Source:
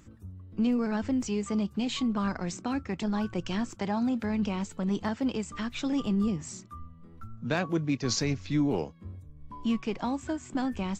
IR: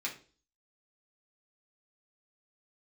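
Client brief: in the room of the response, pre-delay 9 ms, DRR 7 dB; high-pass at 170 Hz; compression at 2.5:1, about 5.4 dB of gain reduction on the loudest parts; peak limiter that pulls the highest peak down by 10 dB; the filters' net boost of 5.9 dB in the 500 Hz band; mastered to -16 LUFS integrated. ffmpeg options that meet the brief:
-filter_complex "[0:a]highpass=170,equalizer=f=500:t=o:g=7.5,acompressor=threshold=0.0355:ratio=2.5,alimiter=level_in=1.33:limit=0.0631:level=0:latency=1,volume=0.75,asplit=2[s0][s1];[1:a]atrim=start_sample=2205,adelay=9[s2];[s1][s2]afir=irnorm=-1:irlink=0,volume=0.316[s3];[s0][s3]amix=inputs=2:normalize=0,volume=8.91"

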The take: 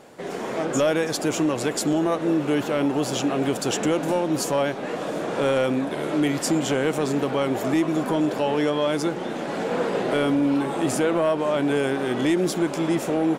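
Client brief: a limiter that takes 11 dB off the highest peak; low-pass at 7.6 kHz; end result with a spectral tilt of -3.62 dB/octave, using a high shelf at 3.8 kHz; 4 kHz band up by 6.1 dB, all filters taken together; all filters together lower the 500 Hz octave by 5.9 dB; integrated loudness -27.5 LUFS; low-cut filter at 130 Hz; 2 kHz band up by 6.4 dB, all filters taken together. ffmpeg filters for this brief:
-af "highpass=130,lowpass=7600,equalizer=f=500:t=o:g=-8,equalizer=f=2000:t=o:g=7,highshelf=f=3800:g=4.5,equalizer=f=4000:t=o:g=3,volume=1.12,alimiter=limit=0.133:level=0:latency=1"

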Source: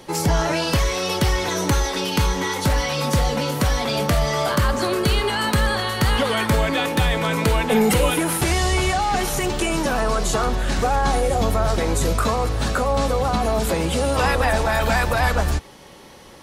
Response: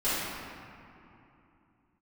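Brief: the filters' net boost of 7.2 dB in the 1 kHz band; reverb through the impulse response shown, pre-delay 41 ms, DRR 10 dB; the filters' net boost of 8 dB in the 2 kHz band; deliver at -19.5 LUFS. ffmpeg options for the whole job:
-filter_complex "[0:a]equalizer=f=1000:t=o:g=7.5,equalizer=f=2000:t=o:g=7.5,asplit=2[s0][s1];[1:a]atrim=start_sample=2205,adelay=41[s2];[s1][s2]afir=irnorm=-1:irlink=0,volume=0.0794[s3];[s0][s3]amix=inputs=2:normalize=0,volume=0.668"

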